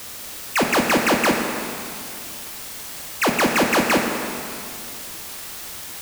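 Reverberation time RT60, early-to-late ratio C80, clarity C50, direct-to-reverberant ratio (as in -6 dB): 2.5 s, 4.5 dB, 3.5 dB, 2.0 dB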